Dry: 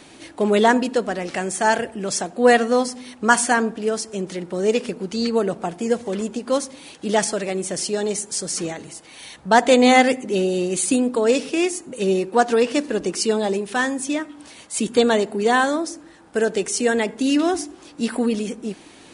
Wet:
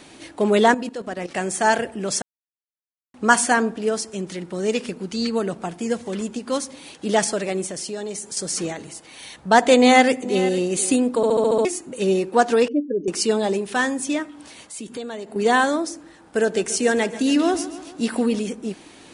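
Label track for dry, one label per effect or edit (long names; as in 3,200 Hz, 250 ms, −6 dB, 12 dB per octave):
0.740000	1.350000	output level in coarse steps of 14 dB
2.220000	3.140000	silence
4.100000	6.680000	parametric band 550 Hz −4.5 dB 1.6 octaves
7.660000	8.370000	downward compressor 2.5 to 1, threshold −29 dBFS
9.750000	10.440000	delay throw 470 ms, feedback 15%, level −15.5 dB
11.160000	11.160000	stutter in place 0.07 s, 7 plays
12.680000	13.080000	expanding power law on the bin magnitudes exponent 2.8
14.290000	15.360000	downward compressor 2.5 to 1, threshold −36 dBFS
16.400000	18.390000	repeating echo 140 ms, feedback 56%, level −15 dB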